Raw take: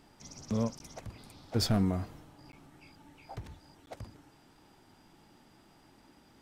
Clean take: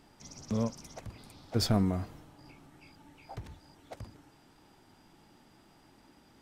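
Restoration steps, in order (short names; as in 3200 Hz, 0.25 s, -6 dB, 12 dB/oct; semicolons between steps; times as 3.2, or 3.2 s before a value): clip repair -19.5 dBFS; interpolate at 0.79/2.52/3.86, 11 ms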